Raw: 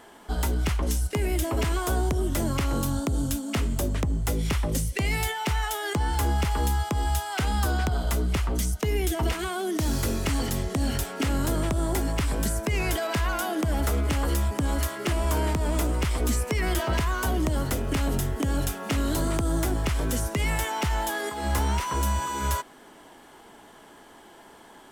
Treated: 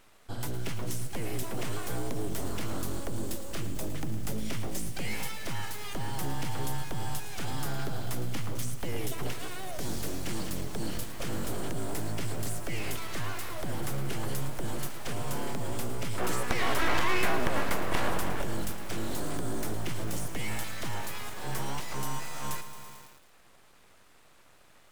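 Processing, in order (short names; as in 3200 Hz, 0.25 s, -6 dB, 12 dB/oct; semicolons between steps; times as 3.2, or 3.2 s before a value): bell 940 Hz -3.5 dB 2.3 oct, from 16.18 s +13 dB, from 18.42 s -2.5 dB; full-wave rectifier; lo-fi delay 0.111 s, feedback 80%, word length 6-bit, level -13.5 dB; gain -5.5 dB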